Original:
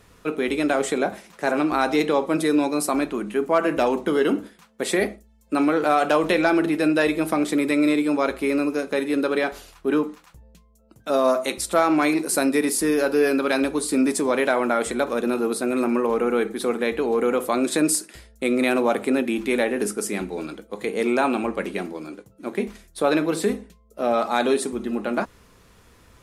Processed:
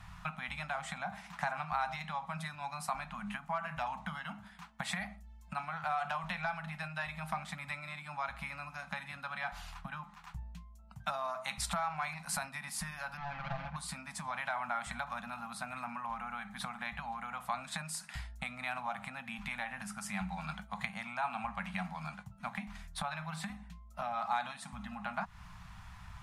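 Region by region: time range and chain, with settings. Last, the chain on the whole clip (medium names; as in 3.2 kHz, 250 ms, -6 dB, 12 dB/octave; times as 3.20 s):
13.17–13.76 s: median filter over 41 samples + distance through air 170 m + comb 5.9 ms, depth 76%
whole clip: low-pass 1.8 kHz 6 dB/octave; compression 16:1, threshold -31 dBFS; elliptic band-stop 180–780 Hz, stop band 60 dB; trim +5.5 dB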